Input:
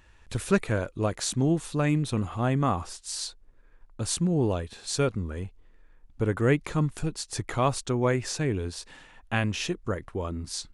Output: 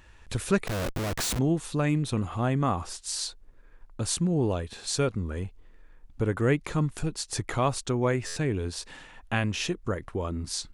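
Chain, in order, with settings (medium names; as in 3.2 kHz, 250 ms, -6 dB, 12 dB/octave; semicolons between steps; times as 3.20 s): in parallel at +0.5 dB: compression 5:1, threshold -34 dBFS, peak gain reduction 15.5 dB; 0.67–1.39 s: on the sum: Schmitt trigger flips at -41 dBFS; buffer glitch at 8.26 s, samples 512, times 8; trim -3 dB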